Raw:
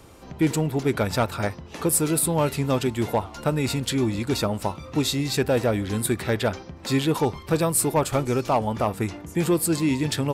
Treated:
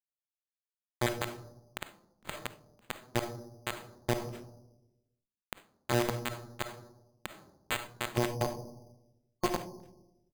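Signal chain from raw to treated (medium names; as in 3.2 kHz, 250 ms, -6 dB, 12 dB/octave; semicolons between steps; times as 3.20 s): time reversed locally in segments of 246 ms; treble shelf 12 kHz +7 dB; feedback comb 120 Hz, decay 0.64 s, harmonics odd, mix 100%; delay 461 ms -17 dB; bit crusher 5-bit; peaking EQ 220 Hz +7 dB 0.42 oct; valve stage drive 27 dB, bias 0.8; time-frequency box 8.10–10.01 s, 1.1–6.4 kHz -21 dB; reverberation RT60 0.95 s, pre-delay 10 ms, DRR 6.5 dB; careless resampling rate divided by 8×, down none, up hold; trim +8.5 dB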